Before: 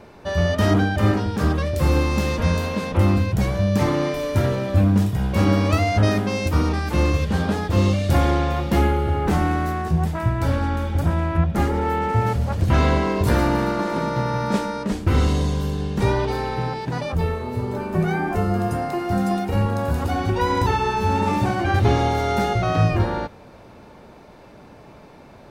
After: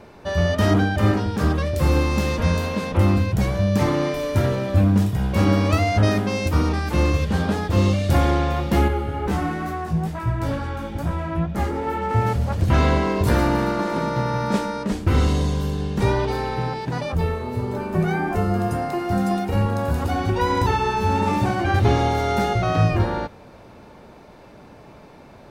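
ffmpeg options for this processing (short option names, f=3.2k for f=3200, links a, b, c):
-filter_complex "[0:a]asettb=1/sr,asplit=3[a][b][c];[a]atrim=end=8.884[d];[b]atrim=start=8.88:end=12.11,asetpts=PTS-STARTPTS,afade=t=in:d=0.004:c=qsin,afade=t=out:st=3.226:d=0.004:c=qsin,flanger=delay=16:depth=2.5:speed=2.2[e];[c]atrim=start=12.106[f];[d][e]acrossfade=d=0.004:c1=hsin:c2=qsin[g];[g][f]acrossfade=d=0.004:c1=qsin:c2=hsin"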